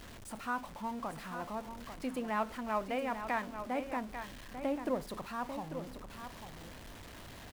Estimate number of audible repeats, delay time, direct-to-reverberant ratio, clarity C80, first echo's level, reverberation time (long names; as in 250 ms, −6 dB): 1, 844 ms, no reverb audible, no reverb audible, −9.0 dB, no reverb audible